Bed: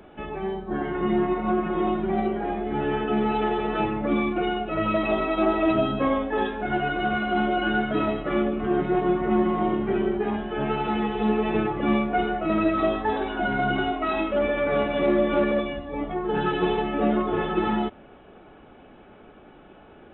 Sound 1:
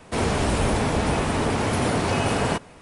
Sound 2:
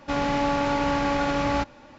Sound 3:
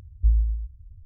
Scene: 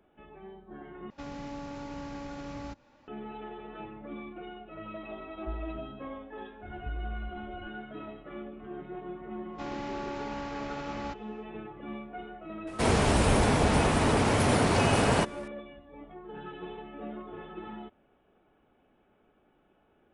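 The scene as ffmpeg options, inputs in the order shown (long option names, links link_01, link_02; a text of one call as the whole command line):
ffmpeg -i bed.wav -i cue0.wav -i cue1.wav -i cue2.wav -filter_complex "[2:a]asplit=2[link_01][link_02];[3:a]asplit=2[link_03][link_04];[0:a]volume=-18dB[link_05];[link_01]acrossover=split=430|5300[link_06][link_07][link_08];[link_07]acompressor=threshold=-35dB:ratio=2.5:attack=19:release=279:knee=2.83:detection=peak[link_09];[link_06][link_09][link_08]amix=inputs=3:normalize=0[link_10];[link_03]highpass=43[link_11];[link_04]acompressor=threshold=-31dB:ratio=6:attack=3.2:release=140:knee=1:detection=peak[link_12];[link_05]asplit=2[link_13][link_14];[link_13]atrim=end=1.104[link_15];[link_10]atrim=end=1.98,asetpts=PTS-STARTPTS,volume=-13dB[link_16];[link_14]atrim=start=3.076[link_17];[link_11]atrim=end=1.05,asetpts=PTS-STARTPTS,volume=-17dB,afade=type=in:duration=0.004:curve=hsin,afade=type=out:start_time=1.046:duration=0.004:curve=hsin,adelay=5230[link_18];[link_12]atrim=end=1.05,asetpts=PTS-STARTPTS,volume=-3dB,afade=type=in:duration=0.004:curve=hsin,afade=type=out:start_time=1.046:duration=0.004:curve=hsin,adelay=6630[link_19];[link_02]atrim=end=1.98,asetpts=PTS-STARTPTS,volume=-13.5dB,afade=type=in:duration=0.1,afade=type=out:start_time=1.88:duration=0.1,adelay=9500[link_20];[1:a]atrim=end=2.81,asetpts=PTS-STARTPTS,volume=-1.5dB,afade=type=in:duration=0.004:curve=hsin,afade=type=out:start_time=2.806:duration=0.004:curve=hsin,adelay=12670[link_21];[link_15][link_16]acrossfade=duration=0.004:curve1=hsin:curve2=hsin[link_22];[link_22][link_17]acrossfade=duration=0.004:curve1=hsin:curve2=hsin[link_23];[link_23][link_18][link_19][link_20][link_21]amix=inputs=5:normalize=0" out.wav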